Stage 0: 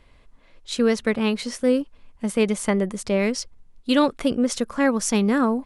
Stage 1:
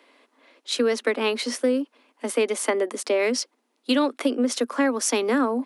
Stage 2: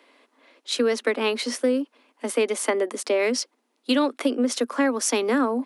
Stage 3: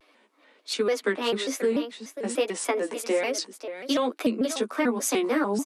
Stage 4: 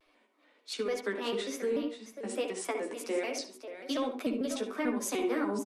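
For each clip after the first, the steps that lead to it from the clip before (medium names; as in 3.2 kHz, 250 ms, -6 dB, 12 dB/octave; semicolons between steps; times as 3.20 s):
steep high-pass 240 Hz 96 dB/octave; peaking EQ 7.4 kHz -3 dB 0.54 oct; compression, threshold -22 dBFS, peak gain reduction 8 dB; trim +4 dB
no audible change
flange 1.2 Hz, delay 10 ms, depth 4.9 ms, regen +5%; on a send: delay 538 ms -11 dB; on the sum: vibrato with a chosen wave square 3.4 Hz, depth 160 cents
feedback delay 70 ms, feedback 30%, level -17 dB; reverberation RT60 0.20 s, pre-delay 59 ms, DRR 6 dB; trim -8.5 dB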